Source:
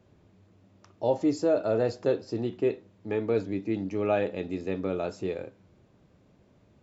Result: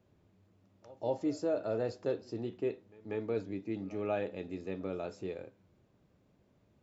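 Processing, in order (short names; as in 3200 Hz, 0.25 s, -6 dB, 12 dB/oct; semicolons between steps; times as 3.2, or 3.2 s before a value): pre-echo 0.189 s -21 dB; gain -8 dB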